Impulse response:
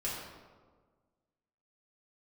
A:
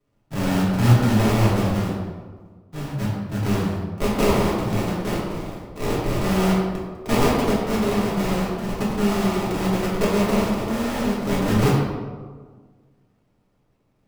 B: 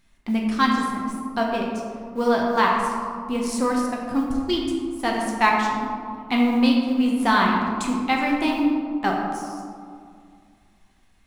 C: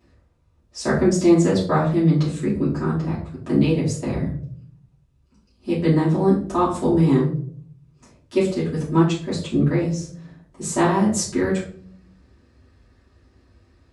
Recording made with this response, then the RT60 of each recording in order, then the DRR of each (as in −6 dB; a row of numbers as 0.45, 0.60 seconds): A; 1.5 s, 2.2 s, non-exponential decay; −7.5, −2.0, −11.0 decibels